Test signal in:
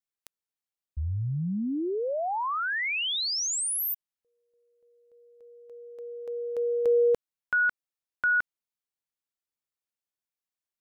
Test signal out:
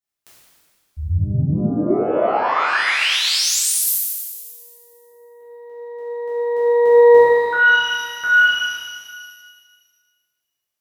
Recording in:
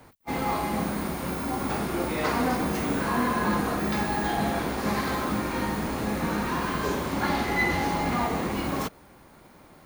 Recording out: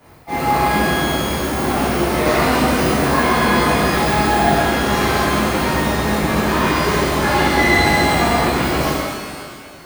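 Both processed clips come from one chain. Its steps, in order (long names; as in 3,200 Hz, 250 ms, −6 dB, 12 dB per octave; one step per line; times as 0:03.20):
reverb with rising layers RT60 1.7 s, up +12 semitones, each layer −8 dB, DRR −11.5 dB
level −1.5 dB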